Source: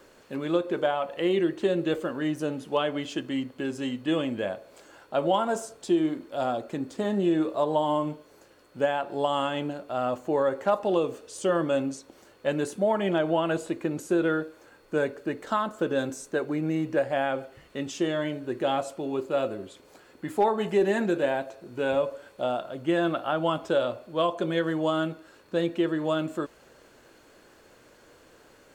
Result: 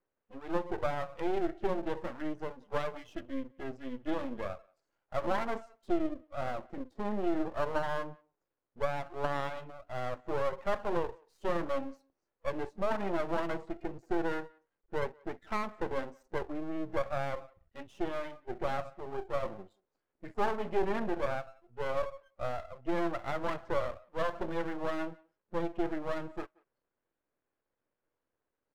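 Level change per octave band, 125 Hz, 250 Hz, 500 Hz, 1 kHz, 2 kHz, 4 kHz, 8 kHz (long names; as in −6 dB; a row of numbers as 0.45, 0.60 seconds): −8.5 dB, −10.0 dB, −9.0 dB, −6.5 dB, −6.5 dB, −12.5 dB, below −15 dB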